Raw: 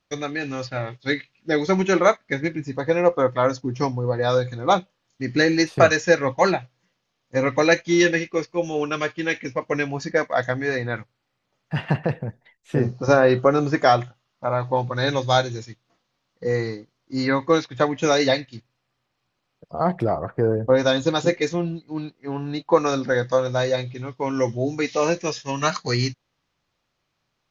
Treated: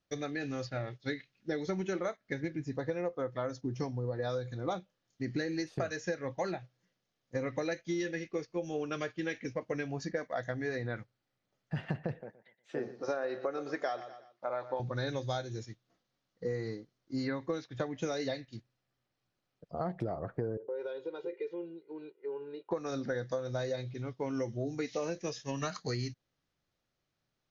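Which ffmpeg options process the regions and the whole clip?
-filter_complex "[0:a]asettb=1/sr,asplit=3[a][b][c];[a]atrim=end=12.214[d];[b]atrim=start=12.21:end=14.8,asetpts=PTS-STARTPTS,afade=t=in:d=0.004:c=qsin,afade=t=out:st=2.586:d=0.004:c=qsin,highpass=430,lowpass=5.4k,aecho=1:1:120|240|360:0.15|0.0509|0.0173,atrim=end_sample=114219[e];[c]atrim=start=14.796[f];[d][e]acrossfade=d=0.004:c1=hsin:c2=qsin[g];[g][f]acrossfade=d=0.004:c1=qsin:c2=hsin,asettb=1/sr,asplit=3[h][i][j];[h]atrim=end=20.574[k];[i]atrim=start=20.57:end=22.71,asetpts=PTS-STARTPTS,afade=t=in:d=0.004:c=qsin,afade=t=out:st=2.136:d=0.004:c=qsin,aecho=1:1:2.1:0.96,atrim=end_sample=94374,acompressor=threshold=-33dB:ratio=3:attack=3.2:release=140:knee=1:detection=peak,highpass=f=260:w=0.5412,highpass=f=260:w=1.3066,equalizer=f=270:t=q:w=4:g=-6,equalizer=f=400:t=q:w=4:g=8,equalizer=f=630:t=q:w=4:g=-5,equalizer=f=1.2k:t=q:w=4:g=-3,equalizer=f=1.8k:t=q:w=4:g=-8,lowpass=f=2.9k:w=0.5412,lowpass=f=2.9k:w=1.3066[l];[j]atrim=start=22.706[m];[k][l]acrossfade=d=0.004:c1=hsin:c2=qsin[n];[n][m]acrossfade=d=0.004:c1=qsin:c2=hsin,equalizer=f=1k:t=o:w=0.67:g=-7,equalizer=f=2.5k:t=o:w=0.67:g=-4,equalizer=f=6.3k:t=o:w=0.67:g=3,acompressor=threshold=-24dB:ratio=12,highshelf=f=5.2k:g=-8,volume=-6.5dB"

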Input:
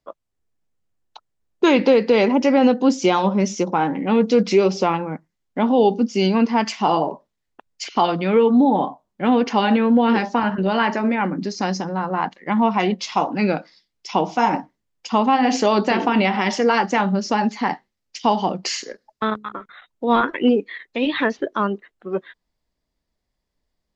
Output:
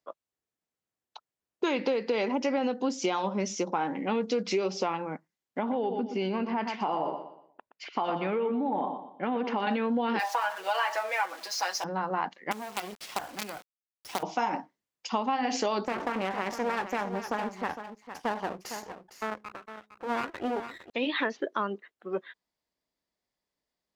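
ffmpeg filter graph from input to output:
-filter_complex "[0:a]asettb=1/sr,asplit=3[a][b][c];[a]atrim=end=5.594[d];[b]atrim=start=5.59:end=9.67,asetpts=PTS-STARTPTS,afade=t=in:d=0.004:c=qsin,afade=t=out:st=4.076:d=0.004:c=qsin,lowpass=2.5k,aecho=1:1:120|240|360|480:0.282|0.093|0.0307|0.0101,atrim=end_sample=179928,acompressor=threshold=-16dB:ratio=6:attack=3.2:release=140:knee=1:detection=peak[e];[c]atrim=start=9.666[f];[d][e]acrossfade=d=0.004:c1=hsin:c2=qsin[g];[g][f]acrossfade=d=0.004:c1=qsin:c2=hsin,asettb=1/sr,asplit=3[h][i][j];[h]atrim=end=10.194[k];[i]atrim=start=10.19:end=11.84,asetpts=PTS-STARTPTS,afade=t=in:d=0.004:c=qsin,afade=t=out:st=1.646:d=0.004:c=qsin,aeval=exprs='val(0)+0.5*0.0251*sgn(val(0))':c=same,highpass=f=590:w=0.5412,highpass=f=590:w=1.3066,aecho=1:1:6.1:0.91,atrim=end_sample=72765[l];[j]atrim=start=11.836[m];[k][l]acrossfade=d=0.004:c1=hsin:c2=qsin[n];[n][m]acrossfade=d=0.004:c1=qsin:c2=hsin,asettb=1/sr,asplit=3[o][p][q];[o]atrim=end=12.514[r];[p]atrim=start=12.51:end=14.23,asetpts=PTS-STARTPTS,afade=t=in:d=0.004:c=qsin,afade=t=out:st=1.716:d=0.004:c=qsin,equalizer=f=740:w=6.5:g=7,acrossover=split=100|4800[s][t][u];[s]acompressor=threshold=-56dB:ratio=4[v];[t]acompressor=threshold=-26dB:ratio=4[w];[u]acompressor=threshold=-44dB:ratio=4[x];[v][w][x]amix=inputs=3:normalize=0,acrusher=bits=4:dc=4:mix=0:aa=0.000001[y];[q]atrim=start=14.226[z];[r][y]acrossfade=d=0.004:c1=hsin:c2=qsin[aa];[aa][z]acrossfade=d=0.004:c1=qsin:c2=hsin,asettb=1/sr,asplit=3[ab][ac][ad];[ab]atrim=end=15.854[ae];[ac]atrim=start=15.85:end=20.9,asetpts=PTS-STARTPTS,afade=t=in:d=0.004:c=qsin,afade=t=out:st=5.046:d=0.004:c=qsin,equalizer=f=3.6k:t=o:w=1.2:g=-14,aeval=exprs='max(val(0),0)':c=same,aecho=1:1:458:0.266,atrim=end_sample=222705[af];[ad]atrim=start=20.896[ag];[ae][af]acrossfade=d=0.004:c1=hsin:c2=qsin[ah];[ah][ag]acrossfade=d=0.004:c1=qsin:c2=hsin,highpass=f=350:p=1,acompressor=threshold=-20dB:ratio=6,volume=-4.5dB"

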